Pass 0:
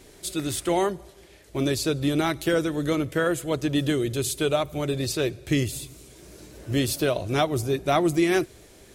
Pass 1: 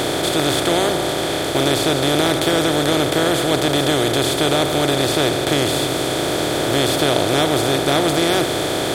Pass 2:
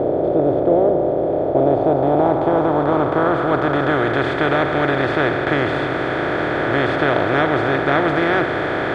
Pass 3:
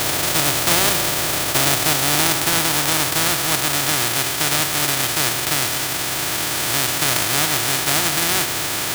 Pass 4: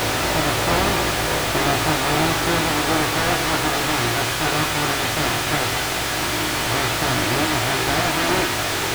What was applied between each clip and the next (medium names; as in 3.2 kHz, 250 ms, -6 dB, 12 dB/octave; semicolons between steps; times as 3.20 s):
spectral levelling over time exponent 0.2; peaking EQ 3.4 kHz +8 dB 0.37 oct; trim -2.5 dB
low-pass sweep 570 Hz -> 1.7 kHz, 1.24–4.27 s; trim -1 dB
formants flattened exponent 0.1; trim -2 dB
chorus voices 6, 0.25 Hz, delay 18 ms, depth 2.3 ms; slew-rate limiter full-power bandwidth 150 Hz; trim +6.5 dB